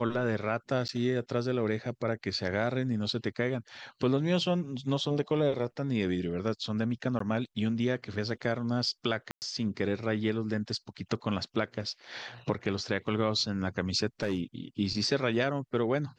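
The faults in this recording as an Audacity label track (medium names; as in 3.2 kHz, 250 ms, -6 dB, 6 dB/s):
0.880000	0.890000	dropout 9.6 ms
7.190000	7.200000	dropout 14 ms
9.310000	9.420000	dropout 109 ms
14.200000	14.400000	clipped -24.5 dBFS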